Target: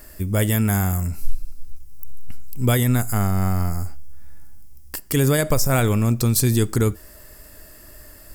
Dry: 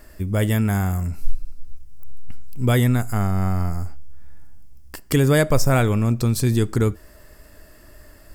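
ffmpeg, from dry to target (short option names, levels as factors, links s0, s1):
-af "crystalizer=i=1.5:c=0,alimiter=level_in=2.37:limit=0.891:release=50:level=0:latency=1,volume=0.447"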